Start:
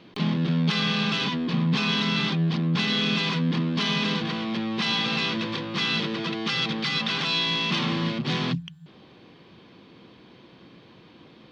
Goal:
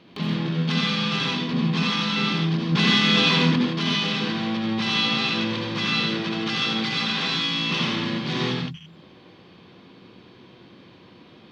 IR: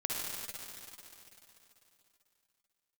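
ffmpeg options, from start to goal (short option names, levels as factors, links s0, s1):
-filter_complex "[0:a]asettb=1/sr,asplit=3[s0][s1][s2];[s0]atrim=end=2.724[s3];[s1]atrim=start=2.72:end=3.56,asetpts=PTS-STARTPTS,afade=t=in:d=0.004:c=qsin,afade=t=out:st=0.836:d=0.004:c=qsin,acontrast=39[s4];[s2]atrim=start=3.556[s5];[s3][s4]acrossfade=d=0.004:c1=hsin:c2=qsin[s6];[s6][s5]acrossfade=d=0.004:c1=qsin:c2=hsin[s7];[1:a]atrim=start_sample=2205,atrim=end_sample=6174,asetrate=33957,aresample=44100[s8];[s7][s8]afir=irnorm=-1:irlink=0,volume=0.794"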